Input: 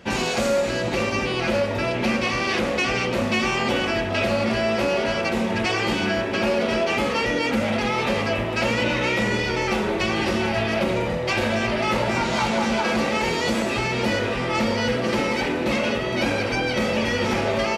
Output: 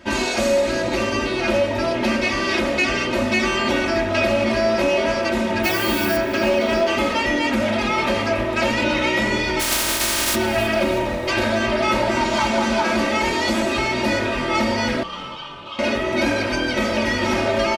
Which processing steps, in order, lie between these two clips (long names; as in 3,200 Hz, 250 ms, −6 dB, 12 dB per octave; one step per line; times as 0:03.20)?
0:09.59–0:10.34: compressing power law on the bin magnitudes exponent 0.16
comb filter 3.2 ms, depth 87%
0:05.63–0:06.16: background noise violet −31 dBFS
0:15.03–0:15.79: pair of resonant band-passes 1,900 Hz, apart 1.4 octaves
echo with shifted repeats 320 ms, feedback 45%, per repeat −43 Hz, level −17.5 dB